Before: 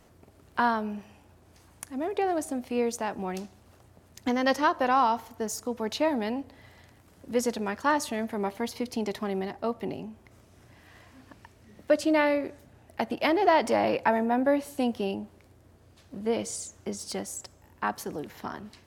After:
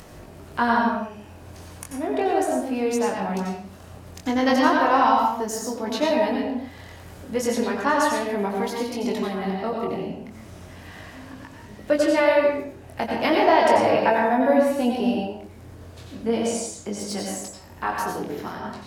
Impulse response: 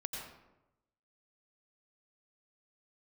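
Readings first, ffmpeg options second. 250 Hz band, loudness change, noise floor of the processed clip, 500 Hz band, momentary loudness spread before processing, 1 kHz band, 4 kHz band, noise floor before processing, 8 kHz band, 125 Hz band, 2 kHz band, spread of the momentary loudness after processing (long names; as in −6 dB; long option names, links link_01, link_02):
+5.5 dB, +6.0 dB, −44 dBFS, +6.5 dB, 15 LU, +6.0 dB, +5.5 dB, −58 dBFS, +4.5 dB, +7.5 dB, +6.0 dB, 23 LU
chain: -filter_complex "[0:a]acompressor=mode=upward:threshold=-38dB:ratio=2.5,flanger=delay=19.5:depth=4:speed=0.35[link_01];[1:a]atrim=start_sample=2205,afade=type=out:start_time=0.39:duration=0.01,atrim=end_sample=17640[link_02];[link_01][link_02]afir=irnorm=-1:irlink=0,volume=8.5dB"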